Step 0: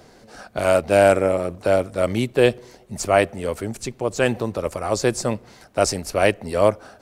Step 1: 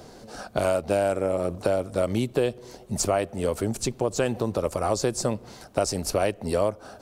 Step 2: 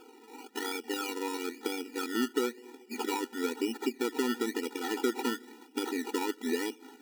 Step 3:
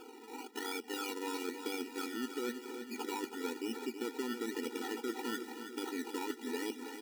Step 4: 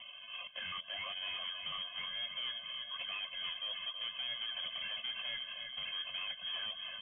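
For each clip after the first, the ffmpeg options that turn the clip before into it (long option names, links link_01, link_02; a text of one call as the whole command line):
ffmpeg -i in.wav -af "equalizer=frequency=2000:width_type=o:width=0.93:gain=-6.5,acompressor=threshold=-24dB:ratio=6,volume=3.5dB" out.wav
ffmpeg -i in.wav -af "asubboost=boost=6:cutoff=230,acrusher=samples=22:mix=1:aa=0.000001:lfo=1:lforange=13.2:lforate=1,afftfilt=real='re*eq(mod(floor(b*sr/1024/250),2),1)':imag='im*eq(mod(floor(b*sr/1024/250),2),1)':win_size=1024:overlap=0.75,volume=-4dB" out.wav
ffmpeg -i in.wav -af "areverse,acompressor=threshold=-38dB:ratio=6,areverse,aecho=1:1:323|646|969|1292|1615|1938|2261:0.355|0.202|0.115|0.0657|0.0375|0.0213|0.0122,volume=2dB" out.wav
ffmpeg -i in.wav -af "asoftclip=type=tanh:threshold=-37dB,lowpass=frequency=3000:width_type=q:width=0.5098,lowpass=frequency=3000:width_type=q:width=0.6013,lowpass=frequency=3000:width_type=q:width=0.9,lowpass=frequency=3000:width_type=q:width=2.563,afreqshift=-3500,volume=2dB" out.wav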